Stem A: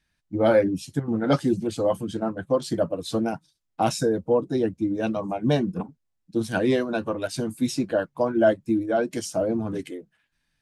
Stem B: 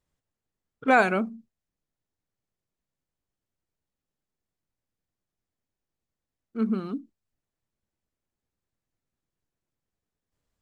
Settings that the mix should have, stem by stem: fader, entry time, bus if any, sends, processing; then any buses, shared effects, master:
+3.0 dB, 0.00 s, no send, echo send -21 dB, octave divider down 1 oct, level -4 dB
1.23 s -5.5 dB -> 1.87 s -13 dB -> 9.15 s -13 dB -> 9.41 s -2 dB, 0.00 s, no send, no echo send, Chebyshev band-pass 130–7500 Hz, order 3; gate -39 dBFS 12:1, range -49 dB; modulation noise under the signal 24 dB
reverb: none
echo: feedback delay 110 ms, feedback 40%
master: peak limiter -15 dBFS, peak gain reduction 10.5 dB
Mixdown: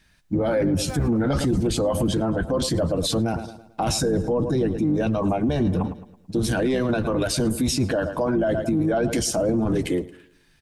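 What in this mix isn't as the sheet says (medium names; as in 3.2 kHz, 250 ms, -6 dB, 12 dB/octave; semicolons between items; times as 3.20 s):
stem A +3.0 dB -> +13.5 dB; stem B -5.5 dB -> -17.0 dB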